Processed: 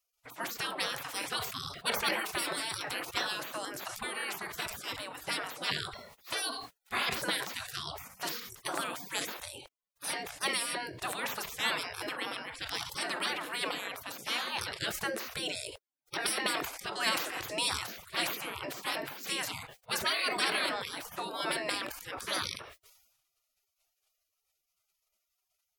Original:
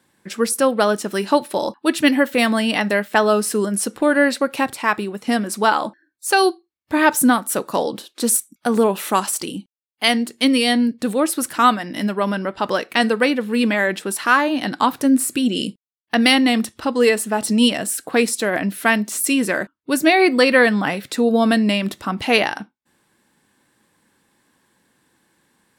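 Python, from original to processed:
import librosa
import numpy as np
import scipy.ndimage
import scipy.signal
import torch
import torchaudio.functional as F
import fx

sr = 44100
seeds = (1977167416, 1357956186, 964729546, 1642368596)

p1 = fx.spec_gate(x, sr, threshold_db=-25, keep='weak')
p2 = fx.high_shelf(p1, sr, hz=2500.0, db=-9.0)
p3 = 10.0 ** (-26.5 / 20.0) * np.tanh(p2 / 10.0 ** (-26.5 / 20.0))
p4 = p2 + F.gain(torch.from_numpy(p3), -6.5).numpy()
p5 = fx.sustainer(p4, sr, db_per_s=56.0)
y = F.gain(torch.from_numpy(p5), 2.0).numpy()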